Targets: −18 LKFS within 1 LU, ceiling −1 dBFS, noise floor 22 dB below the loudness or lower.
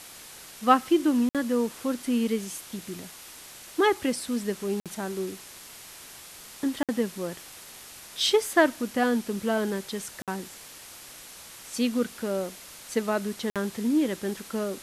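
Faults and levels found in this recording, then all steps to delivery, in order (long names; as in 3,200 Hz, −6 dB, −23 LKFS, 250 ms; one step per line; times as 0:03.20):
number of dropouts 5; longest dropout 57 ms; background noise floor −46 dBFS; target noise floor −50 dBFS; integrated loudness −27.5 LKFS; sample peak −6.5 dBFS; target loudness −18.0 LKFS
→ repair the gap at 0:01.29/0:04.80/0:06.83/0:10.22/0:13.50, 57 ms
broadband denoise 6 dB, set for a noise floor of −46 dBFS
level +9.5 dB
brickwall limiter −1 dBFS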